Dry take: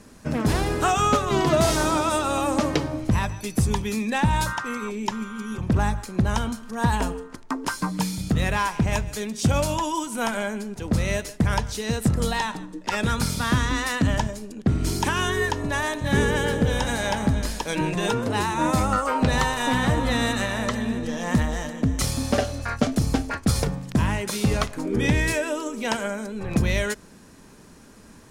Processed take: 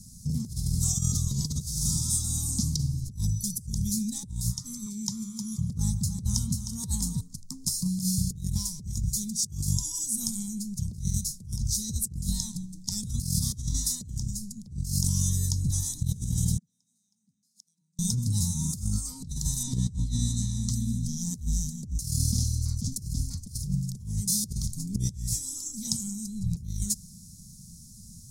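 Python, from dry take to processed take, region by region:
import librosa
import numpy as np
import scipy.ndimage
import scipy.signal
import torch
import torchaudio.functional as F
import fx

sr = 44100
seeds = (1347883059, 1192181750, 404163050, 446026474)

y = fx.chain(x, sr, fx.highpass(hz=130.0, slope=6),
    fx.peak_eq(hz=1400.0, db=8.5, octaves=2.0),
    fx.echo_single(ms=309, db=-9.5), at=(4.86, 7.21))
y = fx.chain(y, sr, fx.gate_flip(shuts_db=-18.0, range_db=-41),
    fx.highpass(hz=210.0, slope=24),
    fx.high_shelf(hz=8700.0, db=-6.0), at=(16.57, 17.99))
y = fx.chain(y, sr, fx.air_absorb(metres=59.0),
    fx.doubler(ms=38.0, db=-14.0), at=(19.63, 20.69))
y = scipy.signal.sosfilt(scipy.signal.cheby2(4, 40, [320.0, 2900.0], 'bandstop', fs=sr, output='sos'), y)
y = fx.low_shelf(y, sr, hz=65.0, db=-7.5)
y = fx.over_compress(y, sr, threshold_db=-32.0, ratio=-0.5)
y = y * librosa.db_to_amplitude(4.5)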